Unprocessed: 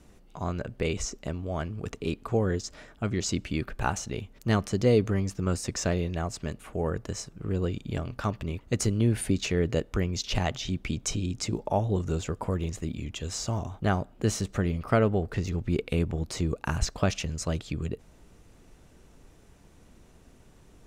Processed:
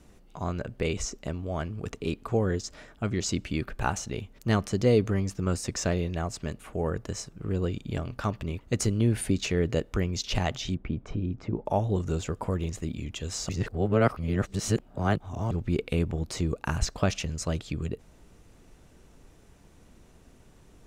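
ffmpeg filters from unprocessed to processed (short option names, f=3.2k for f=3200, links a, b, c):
-filter_complex "[0:a]asplit=3[a][b][c];[a]afade=t=out:st=10.74:d=0.02[d];[b]lowpass=1.4k,afade=t=in:st=10.74:d=0.02,afade=t=out:st=11.65:d=0.02[e];[c]afade=t=in:st=11.65:d=0.02[f];[d][e][f]amix=inputs=3:normalize=0,asplit=3[g][h][i];[g]atrim=end=13.492[j];[h]atrim=start=13.488:end=15.512,asetpts=PTS-STARTPTS,areverse[k];[i]atrim=start=15.508[l];[j][k]acrossfade=d=0.004:c1=hsin:c2=hsin[m];[m][l]acrossfade=d=0.004:c1=hsin:c2=hsin"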